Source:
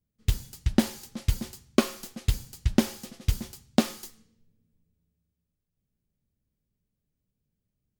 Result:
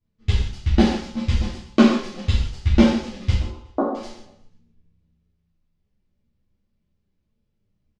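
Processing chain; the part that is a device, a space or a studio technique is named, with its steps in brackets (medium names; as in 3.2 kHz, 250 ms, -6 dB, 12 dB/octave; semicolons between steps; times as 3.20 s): 3.34–3.95 s: elliptic band-pass 290–1200 Hz, stop band 40 dB; distance through air 77 m; feedback delay 120 ms, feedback 47%, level -17.5 dB; string-machine ensemble chorus (three-phase chorus; low-pass 5.5 kHz 12 dB/octave); gated-style reverb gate 220 ms falling, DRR -5 dB; trim +6 dB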